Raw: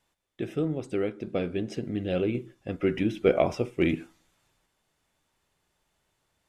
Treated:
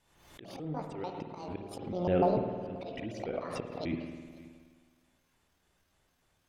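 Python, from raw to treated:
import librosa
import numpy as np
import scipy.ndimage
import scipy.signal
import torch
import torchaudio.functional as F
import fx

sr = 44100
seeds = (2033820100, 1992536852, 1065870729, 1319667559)

y = fx.pitch_trill(x, sr, semitones=10.0, every_ms=148)
y = fx.low_shelf(y, sr, hz=170.0, db=3.5)
y = fx.auto_swell(y, sr, attack_ms=373.0)
y = fx.env_lowpass_down(y, sr, base_hz=1900.0, full_db=-29.5)
y = y + 10.0 ** (-21.0 / 20.0) * np.pad(y, (int(532 * sr / 1000.0), 0))[:len(y)]
y = fx.rev_spring(y, sr, rt60_s=1.6, pass_ms=(52,), chirp_ms=60, drr_db=4.5)
y = fx.pre_swell(y, sr, db_per_s=60.0)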